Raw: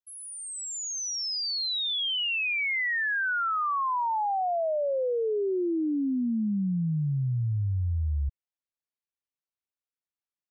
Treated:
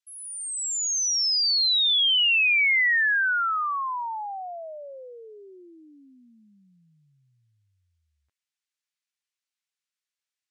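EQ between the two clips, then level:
flat-topped band-pass 3,900 Hz, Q 0.54
+8.0 dB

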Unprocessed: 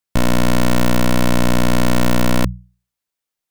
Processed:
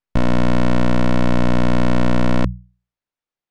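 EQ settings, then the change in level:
head-to-tape spacing loss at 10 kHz 20 dB
0.0 dB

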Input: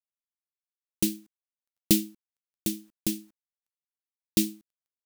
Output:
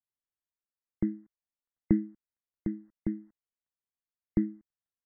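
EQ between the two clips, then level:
linear-phase brick-wall low-pass 2,100 Hz
low-shelf EQ 170 Hz +9.5 dB
−4.5 dB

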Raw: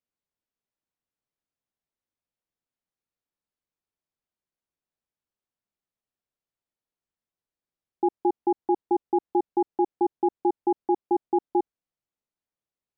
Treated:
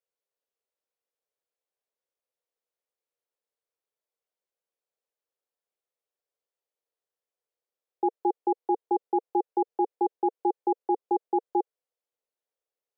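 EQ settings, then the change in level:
four-pole ladder high-pass 420 Hz, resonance 60%
+7.5 dB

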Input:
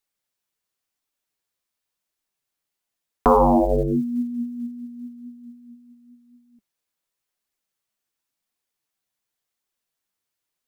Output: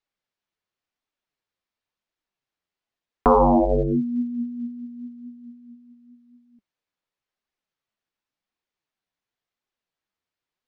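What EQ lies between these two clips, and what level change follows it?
high-frequency loss of the air 150 metres
0.0 dB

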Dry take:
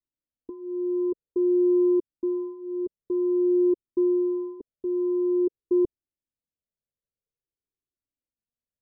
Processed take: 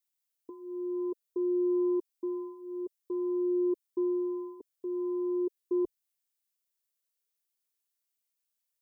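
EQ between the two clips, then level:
spectral tilt +3.5 dB per octave
parametric band 160 Hz −7.5 dB 1.5 octaves
0.0 dB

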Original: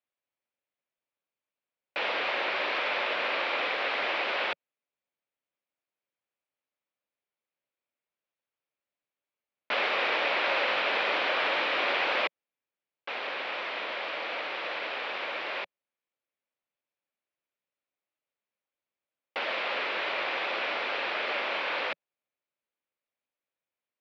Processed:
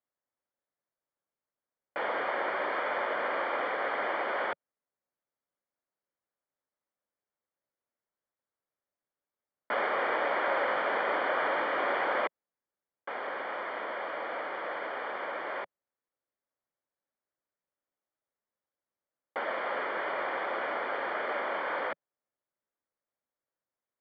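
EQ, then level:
Savitzky-Golay smoothing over 41 samples
+1.0 dB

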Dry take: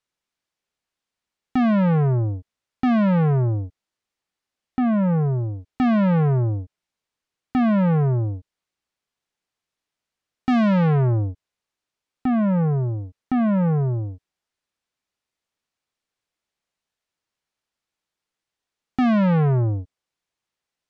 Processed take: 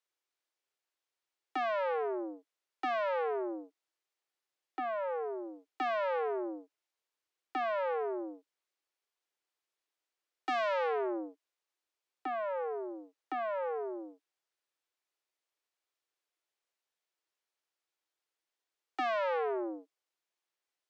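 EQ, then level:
Butterworth high-pass 300 Hz 96 dB per octave
−5.5 dB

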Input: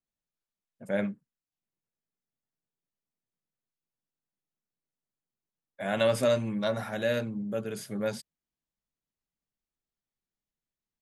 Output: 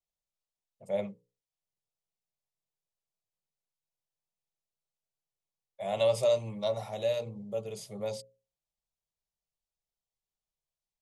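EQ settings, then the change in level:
low-pass filter 9,100 Hz 12 dB per octave
mains-hum notches 60/120/180/240/300/360/420/480/540 Hz
phaser with its sweep stopped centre 650 Hz, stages 4
0.0 dB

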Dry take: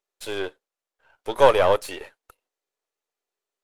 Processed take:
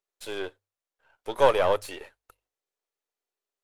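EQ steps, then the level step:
mains-hum notches 50/100 Hz
−4.5 dB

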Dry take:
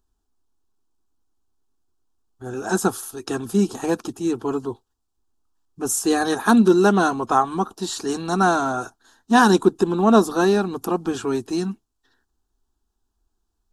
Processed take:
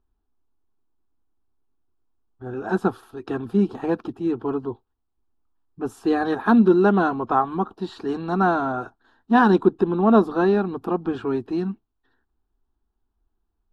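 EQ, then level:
high-frequency loss of the air 460 metres
parametric band 4,500 Hz +2.5 dB
high-shelf EQ 11,000 Hz +7 dB
0.0 dB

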